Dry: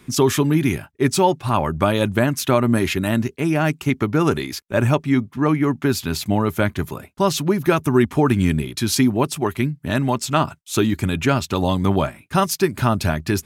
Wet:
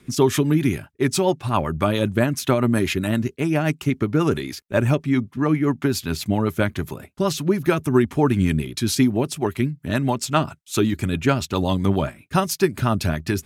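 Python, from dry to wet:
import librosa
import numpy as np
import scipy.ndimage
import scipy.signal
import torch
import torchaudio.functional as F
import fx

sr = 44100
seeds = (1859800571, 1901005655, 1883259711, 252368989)

y = fx.rotary(x, sr, hz=7.5)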